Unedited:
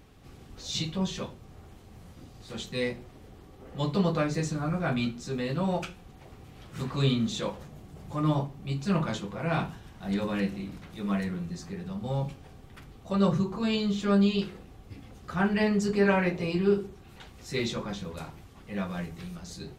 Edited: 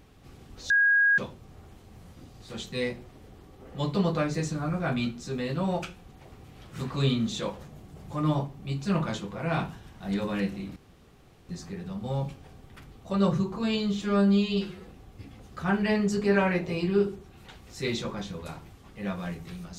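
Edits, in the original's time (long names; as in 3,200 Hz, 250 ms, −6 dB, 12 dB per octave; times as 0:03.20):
0:00.70–0:01.18: beep over 1,640 Hz −18 dBFS
0:10.76–0:11.49: fill with room tone
0:14.02–0:14.59: time-stretch 1.5×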